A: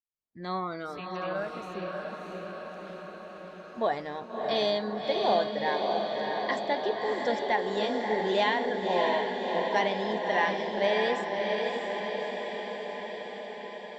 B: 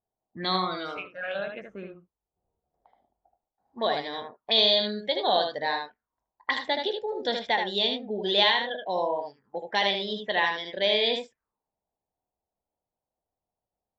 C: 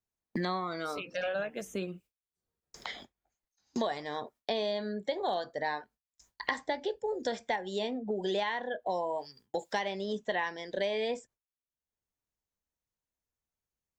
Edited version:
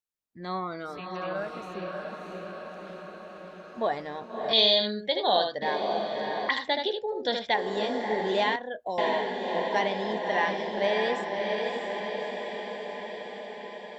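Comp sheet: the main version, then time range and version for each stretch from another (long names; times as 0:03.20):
A
0:04.53–0:05.62: punch in from B
0:06.49–0:07.54: punch in from B
0:08.56–0:08.98: punch in from C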